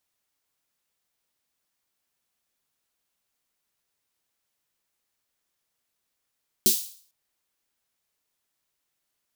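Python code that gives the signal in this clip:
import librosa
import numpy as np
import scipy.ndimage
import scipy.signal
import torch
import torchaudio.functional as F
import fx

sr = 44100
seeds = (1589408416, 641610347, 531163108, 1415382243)

y = fx.drum_snare(sr, seeds[0], length_s=0.45, hz=220.0, second_hz=370.0, noise_db=7, noise_from_hz=3700.0, decay_s=0.16, noise_decay_s=0.49)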